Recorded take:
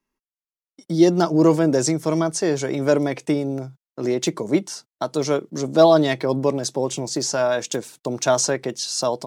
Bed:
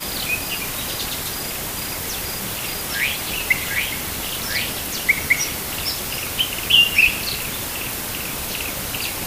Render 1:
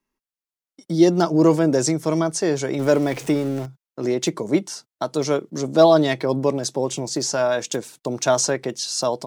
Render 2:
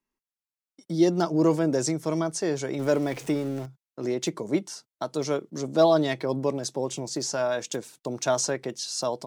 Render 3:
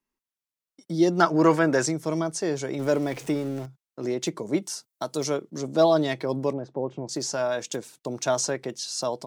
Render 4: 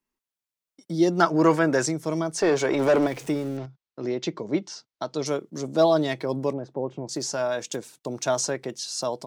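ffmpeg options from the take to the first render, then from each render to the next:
-filter_complex "[0:a]asettb=1/sr,asplit=3[s0][s1][s2];[s0]atrim=end=2.794[s3];[s1]atrim=start=2.79:end=3.66,asetpts=PTS-STARTPTS,afade=t=in:d=0.004:c=qsin,afade=t=out:st=0.866:d=0.004:c=qsin,aeval=exprs='val(0)+0.5*0.0237*sgn(val(0))':c=same[s4];[s2]atrim=start=3.656[s5];[s3][s4]acrossfade=d=0.004:c1=hsin:c2=qsin[s6];[s6][s5]acrossfade=d=0.004:c1=qsin:c2=hsin"
-af "volume=0.501"
-filter_complex "[0:a]asettb=1/sr,asplit=3[s0][s1][s2];[s0]atrim=end=1.194[s3];[s1]atrim=start=1.19:end=1.86,asetpts=PTS-STARTPTS,afade=t=in:d=0.004:c=qsin,afade=t=out:st=0.666:d=0.004:c=qsin,equalizer=f=1600:w=0.77:g=14[s4];[s2]atrim=start=1.856[s5];[s3][s4]acrossfade=d=0.004:c1=hsin:c2=qsin[s6];[s6][s5]acrossfade=d=0.004:c1=qsin:c2=hsin,asettb=1/sr,asplit=3[s7][s8][s9];[s7]atrim=end=4.624[s10];[s8]atrim=start=4.62:end=5.3,asetpts=PTS-STARTPTS,afade=t=in:d=0.004:c=qsin,afade=t=out:st=0.676:d=0.004:c=qsin,highshelf=f=6600:g=11.5[s11];[s9]atrim=start=5.296[s12];[s10][s11]acrossfade=d=0.004:c1=hsin:c2=qsin[s13];[s13][s12]acrossfade=d=0.004:c1=qsin:c2=hsin,asettb=1/sr,asplit=3[s14][s15][s16];[s14]atrim=end=6.534[s17];[s15]atrim=start=6.53:end=7.09,asetpts=PTS-STARTPTS,afade=t=in:d=0.004:c=qsin,afade=t=out:st=0.556:d=0.004:c=qsin,lowpass=1200[s18];[s16]atrim=start=7.086[s19];[s17][s18]acrossfade=d=0.004:c1=hsin:c2=qsin[s20];[s20][s19]acrossfade=d=0.004:c1=qsin:c2=hsin"
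-filter_complex "[0:a]asplit=3[s0][s1][s2];[s0]afade=t=out:st=2.37:d=0.02[s3];[s1]asplit=2[s4][s5];[s5]highpass=f=720:p=1,volume=11.2,asoftclip=type=tanh:threshold=0.299[s6];[s4][s6]amix=inputs=2:normalize=0,lowpass=f=2000:p=1,volume=0.501,afade=t=in:st=2.37:d=0.02,afade=t=out:st=3.06:d=0.02[s7];[s2]afade=t=in:st=3.06:d=0.02[s8];[s3][s7][s8]amix=inputs=3:normalize=0,asettb=1/sr,asplit=3[s9][s10][s11];[s9]atrim=end=3.574[s12];[s10]atrim=start=3.57:end=5.26,asetpts=PTS-STARTPTS,afade=t=in:d=0.004:c=qsin,afade=t=out:st=1.686:d=0.004:c=qsin,lowpass=f=5400:w=0.5412,lowpass=f=5400:w=1.3066[s13];[s11]atrim=start=5.256[s14];[s12][s13]acrossfade=d=0.004:c1=hsin:c2=qsin[s15];[s15][s14]acrossfade=d=0.004:c1=qsin:c2=hsin"

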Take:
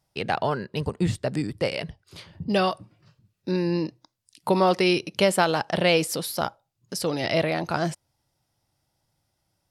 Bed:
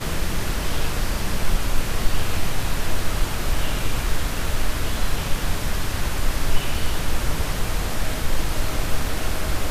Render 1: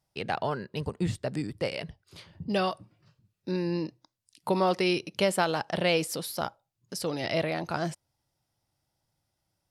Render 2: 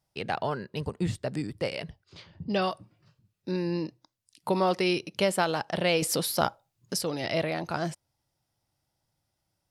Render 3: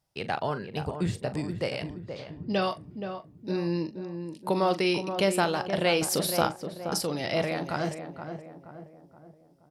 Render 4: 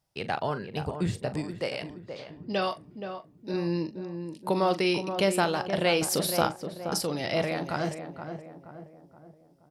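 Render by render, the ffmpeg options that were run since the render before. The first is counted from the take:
-af "volume=0.562"
-filter_complex "[0:a]asettb=1/sr,asplit=3[s0][s1][s2];[s0]atrim=end=2.044[s3];[s1]atrim=start=2.04:end=2.62,asetpts=PTS-STARTPTS,afade=t=in:d=0.004:c=qsin,afade=t=out:st=0.576:d=0.004:c=qsin,lowpass=f=6400:w=0.5412,lowpass=f=6400:w=1.3066[s4];[s2]atrim=start=2.616[s5];[s3][s4]acrossfade=d=0.004:c1=hsin:c2=qsin[s6];[s6][s5]acrossfade=d=0.004:c1=qsin:c2=hsin,asettb=1/sr,asplit=3[s7][s8][s9];[s7]atrim=end=6.024[s10];[s8]atrim=start=6.02:end=7.01,asetpts=PTS-STARTPTS,afade=t=in:d=0.004:c=qsin,afade=t=out:st=0.986:d=0.004:c=qsin,acontrast=58[s11];[s9]atrim=start=7.006[s12];[s10][s11]acrossfade=d=0.004:c1=hsin:c2=qsin[s13];[s13][s12]acrossfade=d=0.004:c1=qsin:c2=hsin"
-filter_complex "[0:a]asplit=2[s0][s1];[s1]adelay=41,volume=0.224[s2];[s0][s2]amix=inputs=2:normalize=0,asplit=2[s3][s4];[s4]adelay=474,lowpass=f=1300:p=1,volume=0.422,asplit=2[s5][s6];[s6]adelay=474,lowpass=f=1300:p=1,volume=0.49,asplit=2[s7][s8];[s8]adelay=474,lowpass=f=1300:p=1,volume=0.49,asplit=2[s9][s10];[s10]adelay=474,lowpass=f=1300:p=1,volume=0.49,asplit=2[s11][s12];[s12]adelay=474,lowpass=f=1300:p=1,volume=0.49,asplit=2[s13][s14];[s14]adelay=474,lowpass=f=1300:p=1,volume=0.49[s15];[s3][s5][s7][s9][s11][s13][s15]amix=inputs=7:normalize=0"
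-filter_complex "[0:a]asettb=1/sr,asplit=3[s0][s1][s2];[s0]atrim=end=1.424[s3];[s1]atrim=start=1.42:end=3.54,asetpts=PTS-STARTPTS,afade=t=in:d=0.004:c=qsin,afade=t=out:st=2.116:d=0.004:c=qsin,equalizer=f=63:t=o:w=2.8:g=-10.5[s4];[s2]atrim=start=3.536[s5];[s3][s4]acrossfade=d=0.004:c1=hsin:c2=qsin[s6];[s6][s5]acrossfade=d=0.004:c1=qsin:c2=hsin"

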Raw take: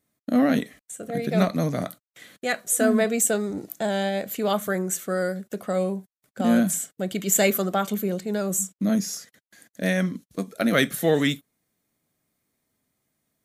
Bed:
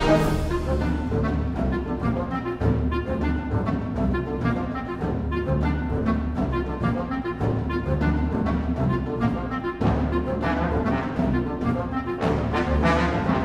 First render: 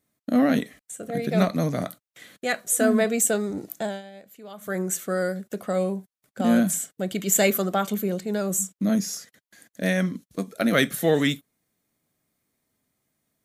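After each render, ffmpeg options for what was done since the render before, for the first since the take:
-filter_complex "[0:a]asplit=3[s0][s1][s2];[s0]atrim=end=4.02,asetpts=PTS-STARTPTS,afade=t=out:st=3.78:d=0.24:silence=0.125893[s3];[s1]atrim=start=4.02:end=4.57,asetpts=PTS-STARTPTS,volume=0.126[s4];[s2]atrim=start=4.57,asetpts=PTS-STARTPTS,afade=t=in:d=0.24:silence=0.125893[s5];[s3][s4][s5]concat=n=3:v=0:a=1"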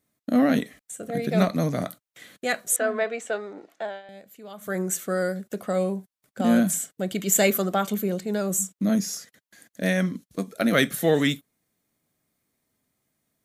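-filter_complex "[0:a]asettb=1/sr,asplit=3[s0][s1][s2];[s0]atrim=end=2.764[s3];[s1]atrim=start=2.76:end=4.09,asetpts=PTS-STARTPTS,afade=t=in:d=0.004:c=qsin,afade=t=out:st=1.326:d=0.004:c=qsin,highpass=530,lowpass=2700[s4];[s2]atrim=start=4.086[s5];[s3][s4]acrossfade=d=0.004:c1=hsin:c2=qsin[s6];[s6][s5]acrossfade=d=0.004:c1=qsin:c2=hsin"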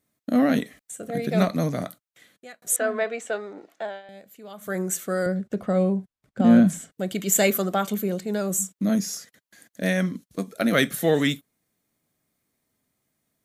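-filter_complex "[0:a]asettb=1/sr,asplit=3[s0][s1][s2];[s0]atrim=end=5.264[s3];[s1]atrim=start=5.26:end=6.92,asetpts=PTS-STARTPTS,afade=t=in:d=0.004:c=qsin,afade=t=out:st=1.656:d=0.004:c=qsin,aemphasis=mode=reproduction:type=bsi[s4];[s2]atrim=start=6.916[s5];[s3][s4]acrossfade=d=0.004:c1=hsin:c2=qsin[s6];[s6][s5]acrossfade=d=0.004:c1=qsin:c2=hsin,asplit=2[s7][s8];[s7]atrim=end=2.62,asetpts=PTS-STARTPTS,afade=t=out:st=1.66:d=0.96[s9];[s8]atrim=start=2.62,asetpts=PTS-STARTPTS,afade=t=in:d=0.004:c=hsin[s10];[s9][s10]concat=n=2:v=0:a=1"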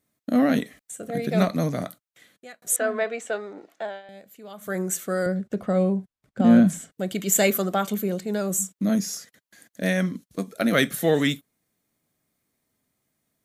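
-af anull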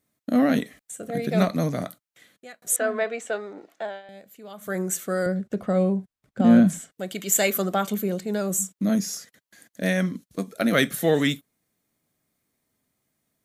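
-filter_complex "[0:a]asettb=1/sr,asplit=3[s0][s1][s2];[s0]atrim=end=6.804[s3];[s1]atrim=start=6.8:end=7.57,asetpts=PTS-STARTPTS,afade=t=in:d=0.004:c=qsin,afade=t=out:st=0.766:d=0.004:c=qsin,lowshelf=f=370:g=-8[s4];[s2]atrim=start=7.566[s5];[s3][s4]acrossfade=d=0.004:c1=hsin:c2=qsin[s6];[s6][s5]acrossfade=d=0.004:c1=qsin:c2=hsin"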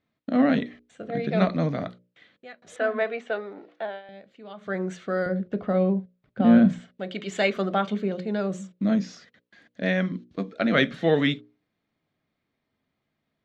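-af "lowpass=f=4000:w=0.5412,lowpass=f=4000:w=1.3066,bandreject=f=60:t=h:w=6,bandreject=f=120:t=h:w=6,bandreject=f=180:t=h:w=6,bandreject=f=240:t=h:w=6,bandreject=f=300:t=h:w=6,bandreject=f=360:t=h:w=6,bandreject=f=420:t=h:w=6,bandreject=f=480:t=h:w=6,bandreject=f=540:t=h:w=6,bandreject=f=600:t=h:w=6"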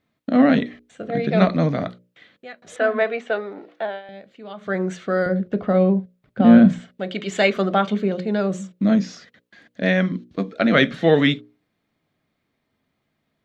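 -af "volume=1.88,alimiter=limit=0.891:level=0:latency=1"

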